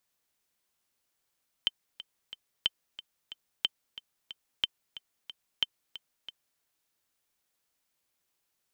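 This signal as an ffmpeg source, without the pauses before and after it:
-f lavfi -i "aevalsrc='pow(10,(-12-16*gte(mod(t,3*60/182),60/182))/20)*sin(2*PI*3090*mod(t,60/182))*exp(-6.91*mod(t,60/182)/0.03)':d=4.94:s=44100"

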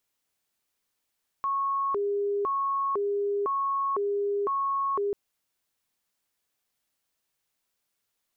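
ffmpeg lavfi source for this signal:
-f lavfi -i "aevalsrc='0.0596*sin(2*PI*(752.5*t+347.5/0.99*(0.5-abs(mod(0.99*t,1)-0.5))))':d=3.69:s=44100"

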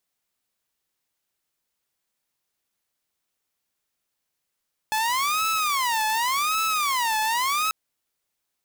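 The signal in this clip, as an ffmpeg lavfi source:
-f lavfi -i "aevalsrc='0.112*(2*mod((1087*t-223/(2*PI*0.88)*sin(2*PI*0.88*t)),1)-1)':d=2.79:s=44100"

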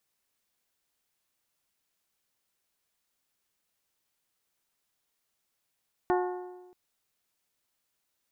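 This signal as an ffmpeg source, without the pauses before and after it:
-f lavfi -i "aevalsrc='0.0708*pow(10,-3*t/1.22)*sin(2*PI*362*t)+0.0473*pow(10,-3*t/0.991)*sin(2*PI*724*t)+0.0316*pow(10,-3*t/0.938)*sin(2*PI*868.8*t)+0.0211*pow(10,-3*t/0.877)*sin(2*PI*1086*t)+0.0141*pow(10,-3*t/0.805)*sin(2*PI*1448*t)+0.00944*pow(10,-3*t/0.753)*sin(2*PI*1810*t)':d=0.63:s=44100"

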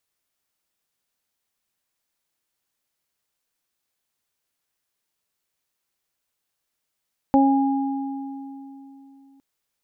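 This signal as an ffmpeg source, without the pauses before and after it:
-f lavfi -i "aevalsrc='0.211*pow(10,-3*t/3.29)*sin(2*PI*273*t)+0.106*pow(10,-3*t/0.5)*sin(2*PI*546*t)+0.141*pow(10,-3*t/2.5)*sin(2*PI*819*t)':d=2.06:s=44100"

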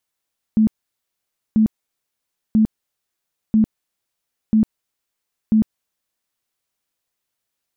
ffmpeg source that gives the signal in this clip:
-f lavfi -i "aevalsrc='0.299*sin(2*PI*218*mod(t,0.99))*lt(mod(t,0.99),22/218)':d=5.94:s=44100"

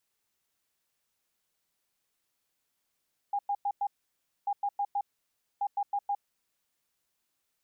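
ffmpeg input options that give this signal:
-f lavfi -i "aevalsrc='0.0473*sin(2*PI*810*t)*clip(min(mod(mod(t,1.14),0.16),0.06-mod(mod(t,1.14),0.16))/0.005,0,1)*lt(mod(t,1.14),0.64)':d=3.42:s=44100"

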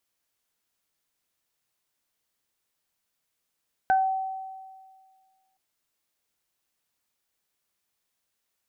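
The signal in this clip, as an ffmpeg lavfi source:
-f lavfi -i "aevalsrc='0.141*pow(10,-3*t/1.79)*sin(2*PI*764*t)+0.0708*pow(10,-3*t/0.23)*sin(2*PI*1528*t)':d=1.67:s=44100"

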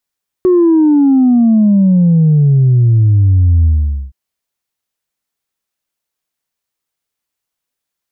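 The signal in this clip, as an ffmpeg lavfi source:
-f lavfi -i "aevalsrc='0.501*clip((3.67-t)/0.47,0,1)*tanh(1*sin(2*PI*370*3.67/log(65/370)*(exp(log(65/370)*t/3.67)-1)))/tanh(1)':d=3.67:s=44100"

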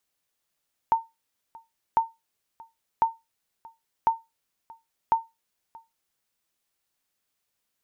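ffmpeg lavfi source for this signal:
-f lavfi -i "aevalsrc='0.237*(sin(2*PI*908*mod(t,1.05))*exp(-6.91*mod(t,1.05)/0.21)+0.0596*sin(2*PI*908*max(mod(t,1.05)-0.63,0))*exp(-6.91*max(mod(t,1.05)-0.63,0)/0.21))':d=5.25:s=44100"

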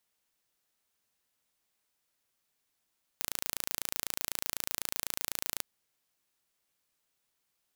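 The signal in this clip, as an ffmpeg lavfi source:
-f lavfi -i "aevalsrc='0.531*eq(mod(n,1575),0)':d=2.42:s=44100"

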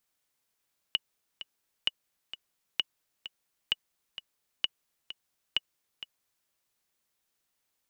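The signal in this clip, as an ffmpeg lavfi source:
-f lavfi -i "aevalsrc='pow(10,(-12.5-13.5*gte(mod(t,2*60/130),60/130))/20)*sin(2*PI*2920*mod(t,60/130))*exp(-6.91*mod(t,60/130)/0.03)':d=5.53:s=44100"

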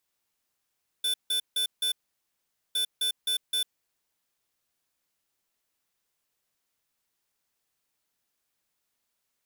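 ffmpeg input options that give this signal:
-f lavfi -i "aevalsrc='0.0447*(2*lt(mod(3510*t,1),0.5)-1)*clip(min(mod(mod(t,1.71),0.26),0.1-mod(mod(t,1.71),0.26))/0.005,0,1)*lt(mod(t,1.71),1.04)':d=3.42:s=44100"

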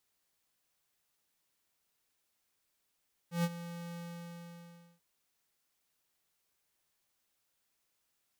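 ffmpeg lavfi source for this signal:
-f lavfi -i "aevalsrc='0.0355*(2*lt(mod(171*t,1),0.5)-1)':d=1.69:s=44100,afade=t=in:d=0.129,afade=t=out:st=0.129:d=0.045:silence=0.188,afade=t=out:st=0.64:d=1.05"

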